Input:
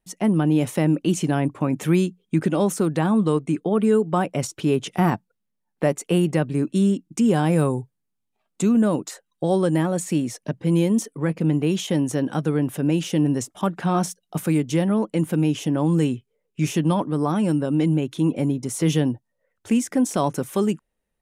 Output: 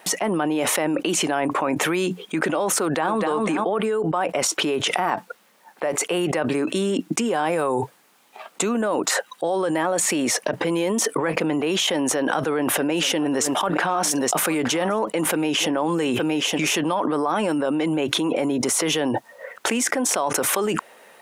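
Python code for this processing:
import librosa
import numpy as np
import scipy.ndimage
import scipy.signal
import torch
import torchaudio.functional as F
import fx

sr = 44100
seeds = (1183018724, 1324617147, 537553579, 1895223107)

y = fx.echo_throw(x, sr, start_s=2.82, length_s=0.44, ms=250, feedback_pct=20, wet_db=-7.5)
y = fx.echo_single(y, sr, ms=868, db=-22.5, at=(11.93, 16.65))
y = scipy.signal.sosfilt(scipy.signal.butter(2, 650.0, 'highpass', fs=sr, output='sos'), y)
y = fx.high_shelf(y, sr, hz=3100.0, db=-10.5)
y = fx.env_flatten(y, sr, amount_pct=100)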